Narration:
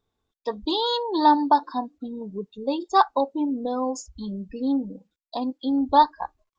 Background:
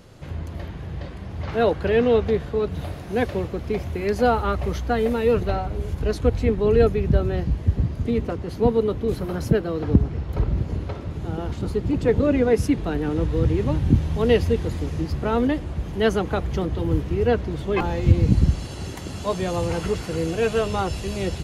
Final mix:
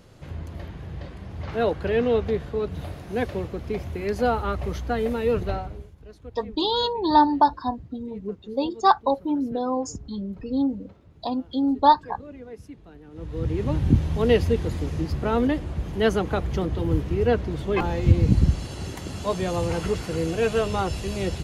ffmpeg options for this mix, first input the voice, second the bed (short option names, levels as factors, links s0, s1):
-filter_complex "[0:a]adelay=5900,volume=1.06[s0];[1:a]volume=7.5,afade=t=out:st=5.53:d=0.38:silence=0.11885,afade=t=in:st=13.11:d=0.7:silence=0.0891251[s1];[s0][s1]amix=inputs=2:normalize=0"